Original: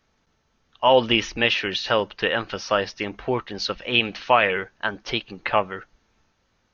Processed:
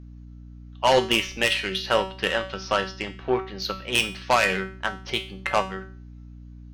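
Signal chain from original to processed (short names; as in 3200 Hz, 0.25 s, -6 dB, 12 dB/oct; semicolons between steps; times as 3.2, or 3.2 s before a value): high shelf 5000 Hz +2.5 dB; sine folder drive 5 dB, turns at -3.5 dBFS; added harmonics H 3 -14 dB, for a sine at -3 dBFS; resonator 190 Hz, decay 0.42 s, harmonics all, mix 80%; hum 60 Hz, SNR 16 dB; gain +4 dB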